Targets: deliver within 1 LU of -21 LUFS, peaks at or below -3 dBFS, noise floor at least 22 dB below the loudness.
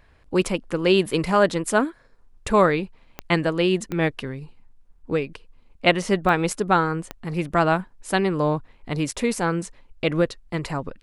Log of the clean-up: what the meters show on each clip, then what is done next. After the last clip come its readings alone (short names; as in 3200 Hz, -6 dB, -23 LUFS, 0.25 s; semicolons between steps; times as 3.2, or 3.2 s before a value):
clicks 4; loudness -23.0 LUFS; peak -3.5 dBFS; loudness target -21.0 LUFS
-> de-click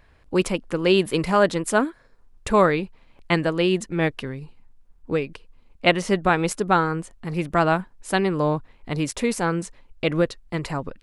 clicks 0; loudness -23.0 LUFS; peak -3.5 dBFS; loudness target -21.0 LUFS
-> gain +2 dB; limiter -3 dBFS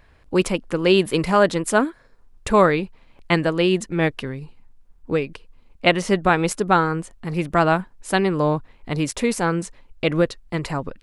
loudness -21.0 LUFS; peak -3.0 dBFS; noise floor -53 dBFS